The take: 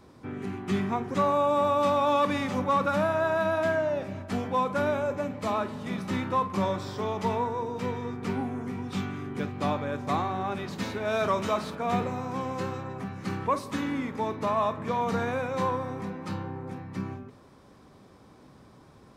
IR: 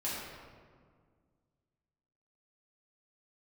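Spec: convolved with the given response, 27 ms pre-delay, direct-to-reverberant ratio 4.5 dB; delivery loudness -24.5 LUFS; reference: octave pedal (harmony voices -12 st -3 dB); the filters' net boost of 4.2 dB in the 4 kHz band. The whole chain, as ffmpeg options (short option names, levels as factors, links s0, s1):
-filter_complex "[0:a]equalizer=f=4000:t=o:g=5,asplit=2[s0][s1];[1:a]atrim=start_sample=2205,adelay=27[s2];[s1][s2]afir=irnorm=-1:irlink=0,volume=0.355[s3];[s0][s3]amix=inputs=2:normalize=0,asplit=2[s4][s5];[s5]asetrate=22050,aresample=44100,atempo=2,volume=0.708[s6];[s4][s6]amix=inputs=2:normalize=0,volume=1.19"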